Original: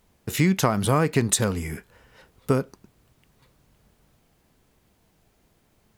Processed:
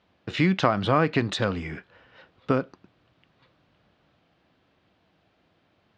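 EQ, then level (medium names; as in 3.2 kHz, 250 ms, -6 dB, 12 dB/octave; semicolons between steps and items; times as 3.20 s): cabinet simulation 130–3900 Hz, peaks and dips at 140 Hz -6 dB, 220 Hz -7 dB, 420 Hz -7 dB, 920 Hz -4 dB, 2.1 kHz -3 dB; +3.0 dB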